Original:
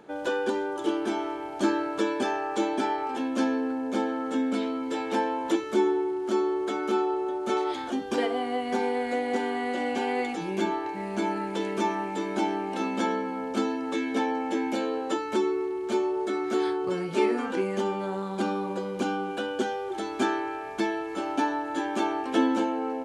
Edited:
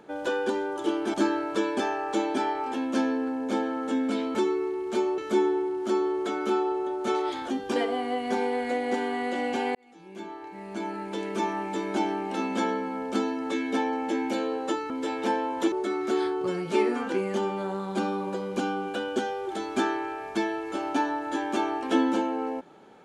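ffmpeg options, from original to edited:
ffmpeg -i in.wav -filter_complex "[0:a]asplit=7[link_01][link_02][link_03][link_04][link_05][link_06][link_07];[link_01]atrim=end=1.142[link_08];[link_02]atrim=start=1.568:end=4.782[link_09];[link_03]atrim=start=15.318:end=16.152[link_10];[link_04]atrim=start=5.598:end=10.17,asetpts=PTS-STARTPTS,afade=type=out:start_time=4.568:duration=0.004:curve=hsin[link_11];[link_05]atrim=start=10.17:end=15.322,asetpts=PTS-STARTPTS,afade=type=in:duration=1.96[link_12];[link_06]atrim=start=4.778:end=5.602[link_13];[link_07]atrim=start=16.148[link_14];[link_08][link_09]acrossfade=duration=0.004:curve1=hsin:curve2=hsin[link_15];[link_15][link_10]acrossfade=duration=0.004:curve1=hsin:curve2=hsin[link_16];[link_11][link_12]concat=n=2:v=0:a=1[link_17];[link_16][link_17]acrossfade=duration=0.004:curve1=hsin:curve2=hsin[link_18];[link_18][link_13]acrossfade=duration=0.004:curve1=hsin:curve2=hsin[link_19];[link_19][link_14]acrossfade=duration=0.004:curve1=hsin:curve2=hsin" out.wav

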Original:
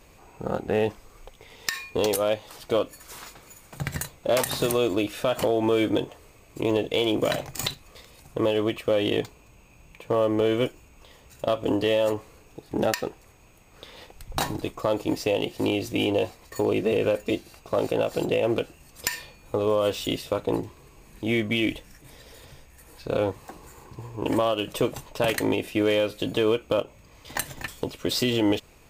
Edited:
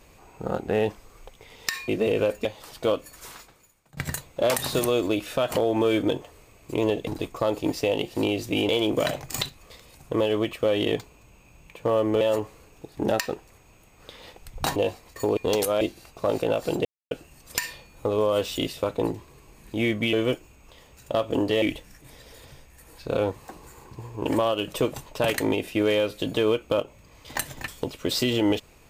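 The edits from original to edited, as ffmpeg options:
ffmpeg -i in.wav -filter_complex "[0:a]asplit=14[link_01][link_02][link_03][link_04][link_05][link_06][link_07][link_08][link_09][link_10][link_11][link_12][link_13][link_14];[link_01]atrim=end=1.882[link_15];[link_02]atrim=start=16.728:end=17.302[link_16];[link_03]atrim=start=2.318:end=3.84,asetpts=PTS-STARTPTS,afade=type=out:start_time=0.812:duration=0.71:curve=qua:silence=0.0944061[link_17];[link_04]atrim=start=3.84:end=6.942,asetpts=PTS-STARTPTS,afade=type=in:duration=0.004:curve=hsin:silence=0.0944061[link_18];[link_05]atrim=start=14.498:end=16.122[link_19];[link_06]atrim=start=6.938:end=10.462[link_20];[link_07]atrim=start=11.948:end=14.502[link_21];[link_08]atrim=start=16.118:end=16.732[link_22];[link_09]atrim=start=1.878:end=2.322[link_23];[link_10]atrim=start=17.298:end=18.34,asetpts=PTS-STARTPTS,afade=type=out:start_time=1.038:duration=0.004:curve=hsin[link_24];[link_11]atrim=start=18.34:end=18.6,asetpts=PTS-STARTPTS,volume=0[link_25];[link_12]atrim=start=18.6:end=21.622,asetpts=PTS-STARTPTS,afade=type=in:duration=0.004:curve=hsin[link_26];[link_13]atrim=start=10.458:end=11.952[link_27];[link_14]atrim=start=21.618[link_28];[link_15][link_16]acrossfade=duration=0.004:curve1=hsin:curve2=hsin[link_29];[link_17][link_18]concat=n=2:v=0:a=1[link_30];[link_29][link_30]acrossfade=duration=0.004:curve1=hsin:curve2=hsin[link_31];[link_31][link_19]acrossfade=duration=0.004:curve1=hsin:curve2=hsin[link_32];[link_32][link_20]acrossfade=duration=0.004:curve1=hsin:curve2=hsin[link_33];[link_33][link_21]acrossfade=duration=0.004:curve1=hsin:curve2=hsin[link_34];[link_34][link_22]acrossfade=duration=0.004:curve1=hsin:curve2=hsin[link_35];[link_35][link_23]acrossfade=duration=0.004:curve1=hsin:curve2=hsin[link_36];[link_24][link_25][link_26]concat=n=3:v=0:a=1[link_37];[link_36][link_37]acrossfade=duration=0.004:curve1=hsin:curve2=hsin[link_38];[link_38][link_27]acrossfade=duration=0.004:curve1=hsin:curve2=hsin[link_39];[link_39][link_28]acrossfade=duration=0.004:curve1=hsin:curve2=hsin" out.wav

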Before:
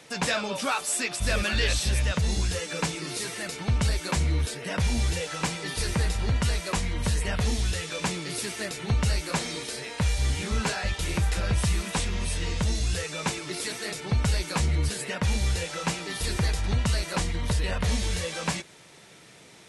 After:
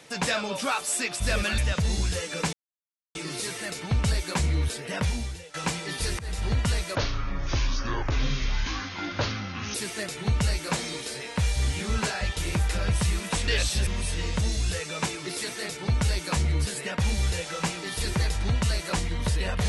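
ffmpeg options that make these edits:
ffmpeg -i in.wav -filter_complex "[0:a]asplit=9[link_01][link_02][link_03][link_04][link_05][link_06][link_07][link_08][link_09];[link_01]atrim=end=1.582[link_10];[link_02]atrim=start=1.968:end=2.92,asetpts=PTS-STARTPTS,afade=type=out:start_time=0.948:duration=0.004:curve=hsin,apad=pad_dur=0.62[link_11];[link_03]atrim=start=2.92:end=5.31,asetpts=PTS-STARTPTS,afade=type=in:duration=0.004:curve=hsin,afade=type=out:start_time=1.88:duration=0.51:curve=qua:silence=0.16788[link_12];[link_04]atrim=start=5.31:end=5.96,asetpts=PTS-STARTPTS,afade=type=in:duration=0.004:curve=hsin:silence=0.16788,afade=type=out:start_time=0.646:duration=0.004:curve=hsin:silence=0.0841395[link_13];[link_05]atrim=start=5.96:end=6.724,asetpts=PTS-STARTPTS,afade=type=in:duration=0.25:silence=0.0841395[link_14];[link_06]atrim=start=6.72:end=8.37,asetpts=PTS-STARTPTS,asetrate=26019,aresample=44100[link_15];[link_07]atrim=start=8.366:end=12.102[link_16];[link_08]atrim=start=1.578:end=1.972[link_17];[link_09]atrim=start=12.098[link_18];[link_11][link_12][link_13][link_14]concat=n=4:v=0:a=1[link_19];[link_10][link_19]acrossfade=duration=0.004:curve1=hsin:curve2=hsin[link_20];[link_20][link_15]acrossfade=duration=0.004:curve1=hsin:curve2=hsin[link_21];[link_21][link_16]acrossfade=duration=0.004:curve1=hsin:curve2=hsin[link_22];[link_22][link_17]acrossfade=duration=0.004:curve1=hsin:curve2=hsin[link_23];[link_23][link_18]acrossfade=duration=0.004:curve1=hsin:curve2=hsin" out.wav

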